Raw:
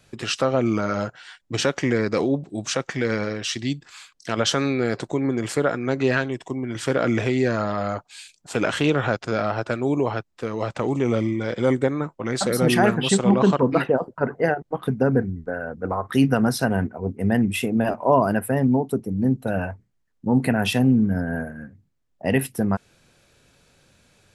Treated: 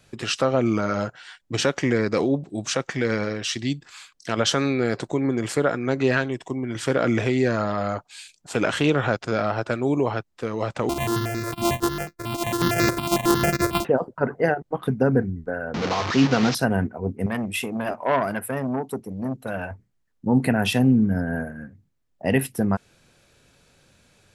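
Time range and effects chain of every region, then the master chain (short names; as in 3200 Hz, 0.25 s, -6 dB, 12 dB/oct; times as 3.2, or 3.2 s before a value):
10.89–13.85 sample sorter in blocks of 128 samples + step phaser 11 Hz 470–3100 Hz
15.74–16.55 delta modulation 32 kbps, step -19 dBFS + HPF 110 Hz + notch 590 Hz, Q 17
17.26–19.71 low shelf 410 Hz -7.5 dB + core saturation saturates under 930 Hz
whole clip: dry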